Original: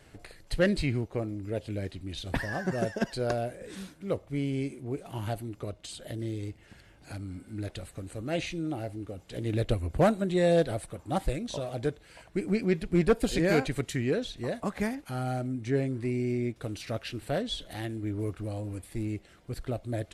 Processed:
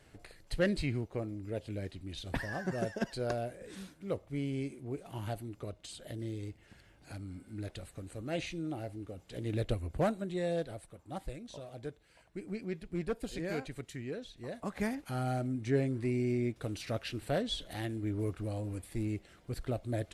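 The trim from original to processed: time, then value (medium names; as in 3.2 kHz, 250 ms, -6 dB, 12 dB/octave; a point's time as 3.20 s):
9.65 s -5 dB
10.78 s -12 dB
14.33 s -12 dB
14.94 s -2 dB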